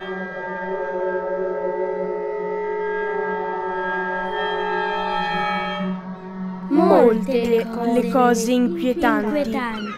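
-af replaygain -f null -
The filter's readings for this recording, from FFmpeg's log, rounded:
track_gain = +0.4 dB
track_peak = 0.596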